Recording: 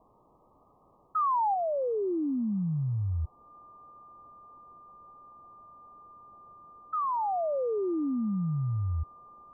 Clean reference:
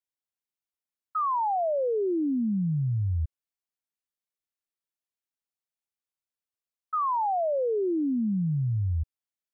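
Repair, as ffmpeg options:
ffmpeg -i in.wav -af "bandreject=frequency=1200:width=30,afwtdn=0.0028,asetnsamples=nb_out_samples=441:pad=0,asendcmd='1.54 volume volume 3dB',volume=0dB" out.wav

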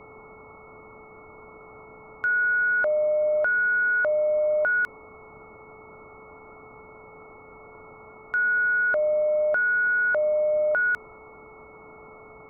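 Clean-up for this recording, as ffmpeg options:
ffmpeg -i in.wav -af "bandreject=frequency=433.7:width_type=h:width=4,bandreject=frequency=867.4:width_type=h:width=4,bandreject=frequency=1301.1:width_type=h:width=4,bandreject=frequency=2200:width=30,afwtdn=0.013" out.wav

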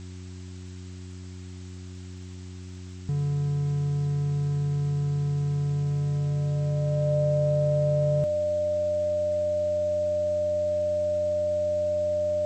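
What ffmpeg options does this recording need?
ffmpeg -i in.wav -af "adeclick=threshold=4,bandreject=frequency=91.7:width_type=h:width=4,bandreject=frequency=183.4:width_type=h:width=4,bandreject=frequency=275.1:width_type=h:width=4,bandreject=frequency=366.8:width_type=h:width=4,bandreject=frequency=600:width=30,afwtdn=0.0028" out.wav

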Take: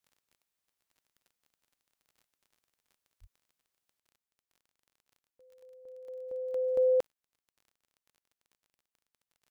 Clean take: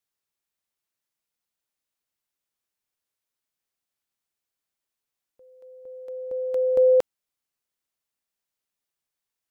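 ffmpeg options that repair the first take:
ffmpeg -i in.wav -filter_complex "[0:a]adeclick=threshold=4,asplit=3[link_01][link_02][link_03];[link_01]afade=type=out:start_time=3.2:duration=0.02[link_04];[link_02]highpass=frequency=140:width=0.5412,highpass=frequency=140:width=1.3066,afade=type=in:start_time=3.2:duration=0.02,afade=type=out:start_time=3.32:duration=0.02[link_05];[link_03]afade=type=in:start_time=3.32:duration=0.02[link_06];[link_04][link_05][link_06]amix=inputs=3:normalize=0,asetnsamples=nb_out_samples=441:pad=0,asendcmd='3.99 volume volume 8dB',volume=0dB" out.wav

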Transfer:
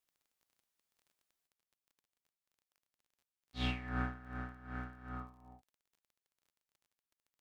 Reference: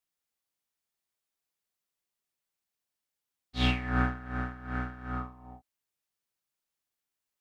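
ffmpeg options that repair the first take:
ffmpeg -i in.wav -af "adeclick=threshold=4,asetnsamples=nb_out_samples=441:pad=0,asendcmd='1.47 volume volume 9.5dB',volume=0dB" out.wav

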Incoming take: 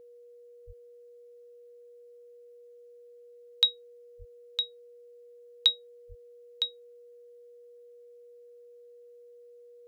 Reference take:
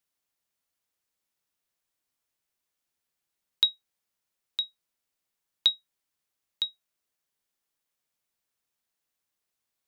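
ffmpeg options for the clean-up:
ffmpeg -i in.wav -filter_complex "[0:a]bandreject=frequency=480:width=30,asplit=3[link_01][link_02][link_03];[link_01]afade=type=out:start_time=0.66:duration=0.02[link_04];[link_02]highpass=frequency=140:width=0.5412,highpass=frequency=140:width=1.3066,afade=type=in:start_time=0.66:duration=0.02,afade=type=out:start_time=0.78:duration=0.02[link_05];[link_03]afade=type=in:start_time=0.78:duration=0.02[link_06];[link_04][link_05][link_06]amix=inputs=3:normalize=0,asplit=3[link_07][link_08][link_09];[link_07]afade=type=out:start_time=4.18:duration=0.02[link_10];[link_08]highpass=frequency=140:width=0.5412,highpass=frequency=140:width=1.3066,afade=type=in:start_time=4.18:duration=0.02,afade=type=out:start_time=4.3:duration=0.02[link_11];[link_09]afade=type=in:start_time=4.3:duration=0.02[link_12];[link_10][link_11][link_12]amix=inputs=3:normalize=0,asplit=3[link_13][link_14][link_15];[link_13]afade=type=out:start_time=6.08:duration=0.02[link_16];[link_14]highpass=frequency=140:width=0.5412,highpass=frequency=140:width=1.3066,afade=type=in:start_time=6.08:duration=0.02,afade=type=out:start_time=6.2:duration=0.02[link_17];[link_15]afade=type=in:start_time=6.2:duration=0.02[link_18];[link_16][link_17][link_18]amix=inputs=3:normalize=0" out.wav

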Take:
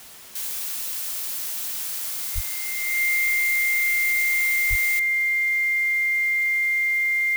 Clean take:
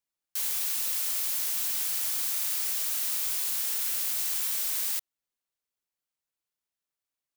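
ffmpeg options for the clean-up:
ffmpeg -i in.wav -filter_complex "[0:a]bandreject=frequency=2100:width=30,asplit=3[link_01][link_02][link_03];[link_01]afade=type=out:start_time=2.34:duration=0.02[link_04];[link_02]highpass=frequency=140:width=0.5412,highpass=frequency=140:width=1.3066,afade=type=in:start_time=2.34:duration=0.02,afade=type=out:start_time=2.46:duration=0.02[link_05];[link_03]afade=type=in:start_time=2.46:duration=0.02[link_06];[link_04][link_05][link_06]amix=inputs=3:normalize=0,asplit=3[link_07][link_08][link_09];[link_07]afade=type=out:start_time=4.69:duration=0.02[link_10];[link_08]highpass=frequency=140:width=0.5412,highpass=frequency=140:width=1.3066,afade=type=in:start_time=4.69:duration=0.02,afade=type=out:start_time=4.81:duration=0.02[link_11];[link_09]afade=type=in:start_time=4.81:duration=0.02[link_12];[link_10][link_11][link_12]amix=inputs=3:normalize=0,afwtdn=0.0063" out.wav

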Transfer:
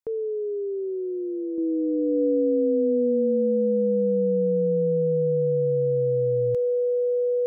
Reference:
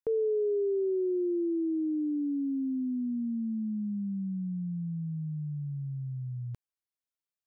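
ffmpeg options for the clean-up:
ffmpeg -i in.wav -af "bandreject=frequency=490:width=30,asetnsamples=nb_out_samples=441:pad=0,asendcmd='1.58 volume volume -5dB',volume=0dB" out.wav

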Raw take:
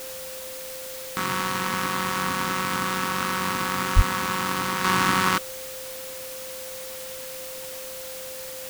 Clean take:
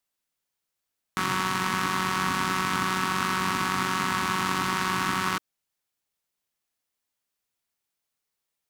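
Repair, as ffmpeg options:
ffmpeg -i in.wav -filter_complex "[0:a]bandreject=frequency=520:width=30,asplit=3[link_01][link_02][link_03];[link_01]afade=type=out:start_time=3.95:duration=0.02[link_04];[link_02]highpass=frequency=140:width=0.5412,highpass=frequency=140:width=1.3066,afade=type=in:start_time=3.95:duration=0.02,afade=type=out:start_time=4.07:duration=0.02[link_05];[link_03]afade=type=in:start_time=4.07:duration=0.02[link_06];[link_04][link_05][link_06]amix=inputs=3:normalize=0,afwtdn=0.013,asetnsamples=nb_out_samples=441:pad=0,asendcmd='4.84 volume volume -5.5dB',volume=0dB" out.wav

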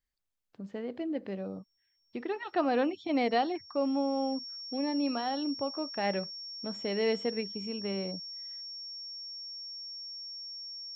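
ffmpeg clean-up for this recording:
ffmpeg -i in.wav -af "bandreject=frequency=5500:width=30" out.wav

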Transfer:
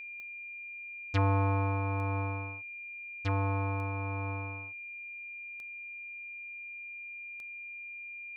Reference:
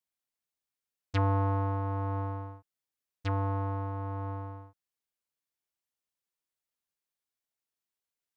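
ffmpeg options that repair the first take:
ffmpeg -i in.wav -af "adeclick=threshold=4,bandreject=frequency=2400:width=30,asetnsamples=nb_out_samples=441:pad=0,asendcmd='5.22 volume volume 4.5dB',volume=0dB" out.wav

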